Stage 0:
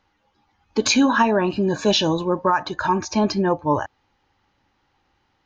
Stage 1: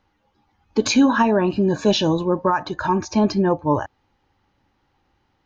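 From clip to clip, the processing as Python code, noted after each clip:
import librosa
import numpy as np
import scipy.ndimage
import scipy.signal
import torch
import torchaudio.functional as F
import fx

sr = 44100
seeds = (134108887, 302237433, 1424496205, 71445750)

y = fx.tilt_shelf(x, sr, db=3.0, hz=690.0)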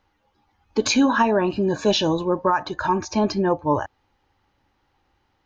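y = fx.peak_eq(x, sr, hz=180.0, db=-4.5, octaves=1.6)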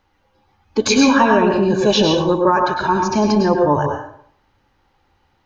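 y = fx.rev_plate(x, sr, seeds[0], rt60_s=0.6, hf_ratio=0.7, predelay_ms=90, drr_db=2.0)
y = y * 10.0 ** (3.5 / 20.0)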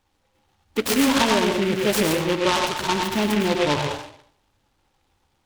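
y = fx.noise_mod_delay(x, sr, seeds[1], noise_hz=2100.0, depth_ms=0.13)
y = y * 10.0 ** (-6.0 / 20.0)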